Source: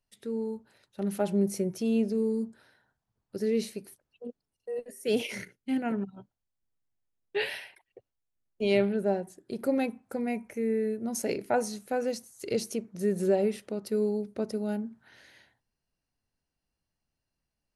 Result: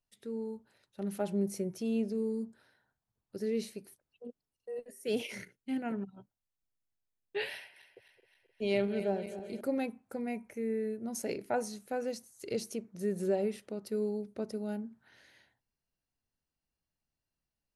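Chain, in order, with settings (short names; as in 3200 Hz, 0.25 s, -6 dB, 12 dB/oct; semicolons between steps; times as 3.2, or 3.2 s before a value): 7.56–9.61 regenerating reverse delay 0.131 s, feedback 76%, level -12 dB; gain -5.5 dB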